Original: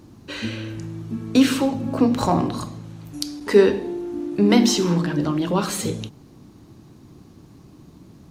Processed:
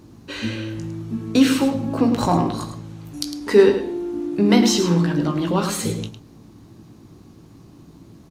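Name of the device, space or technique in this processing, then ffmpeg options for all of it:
slapback doubling: -filter_complex "[0:a]asplit=3[link_01][link_02][link_03];[link_02]adelay=18,volume=-8.5dB[link_04];[link_03]adelay=106,volume=-9.5dB[link_05];[link_01][link_04][link_05]amix=inputs=3:normalize=0"

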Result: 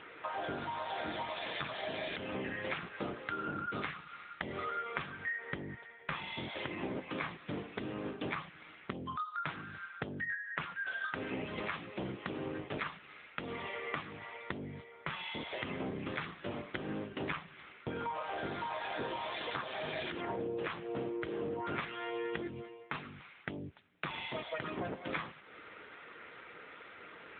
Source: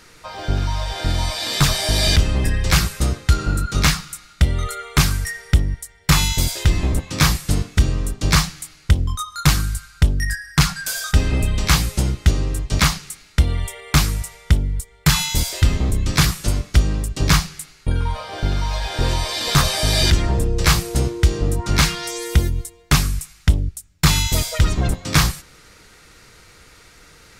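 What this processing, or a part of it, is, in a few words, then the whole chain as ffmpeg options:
voicemail: -af "highpass=300,lowpass=2800,acompressor=threshold=-36dB:ratio=8,volume=2dB" -ar 8000 -c:a libopencore_amrnb -b:a 7950

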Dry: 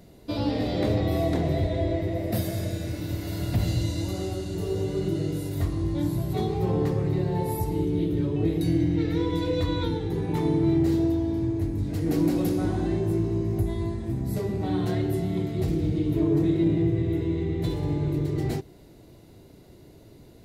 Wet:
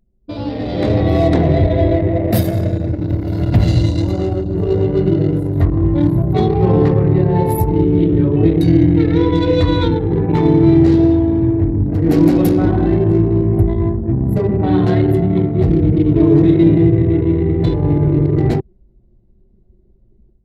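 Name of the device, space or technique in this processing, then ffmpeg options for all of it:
voice memo with heavy noise removal: -af "anlmdn=10,dynaudnorm=framelen=580:gausssize=3:maxgain=11.5dB,volume=2dB"

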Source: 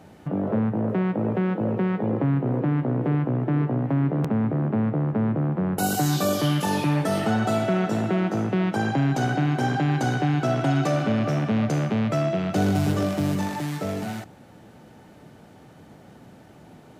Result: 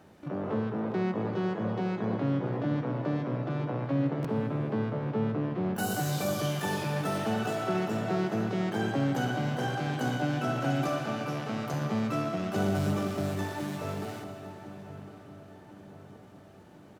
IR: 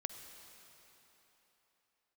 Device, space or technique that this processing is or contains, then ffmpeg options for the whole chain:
shimmer-style reverb: -filter_complex "[0:a]asettb=1/sr,asplit=3[link_01][link_02][link_03];[link_01]atrim=end=10.884[link_04];[link_02]atrim=start=10.88:end=11.74,asetpts=PTS-STARTPTS,afade=type=in:duration=0.004:curve=qsin,afade=type=out:start_time=0.856:duration=0.004:curve=qsin,highpass=frequency=270:poles=1[link_05];[link_03]atrim=start=11.736[link_06];[link_04][link_05]acrossfade=duration=0.004:curve1=hsin:curve2=qsin[link_07];[link_07][link_06]acrossfade=duration=0.004:curve1=qsin:curve2=hsin,asplit=2[link_08][link_09];[link_09]asetrate=88200,aresample=44100,atempo=0.5,volume=-6dB[link_10];[link_08][link_10]amix=inputs=2:normalize=0[link_11];[1:a]atrim=start_sample=2205[link_12];[link_11][link_12]afir=irnorm=-1:irlink=0,asplit=2[link_13][link_14];[link_14]adelay=1055,lowpass=frequency=2000:poles=1,volume=-14dB,asplit=2[link_15][link_16];[link_16]adelay=1055,lowpass=frequency=2000:poles=1,volume=0.54,asplit=2[link_17][link_18];[link_18]adelay=1055,lowpass=frequency=2000:poles=1,volume=0.54,asplit=2[link_19][link_20];[link_20]adelay=1055,lowpass=frequency=2000:poles=1,volume=0.54,asplit=2[link_21][link_22];[link_22]adelay=1055,lowpass=frequency=2000:poles=1,volume=0.54[link_23];[link_13][link_15][link_17][link_19][link_21][link_23]amix=inputs=6:normalize=0,volume=-6.5dB"

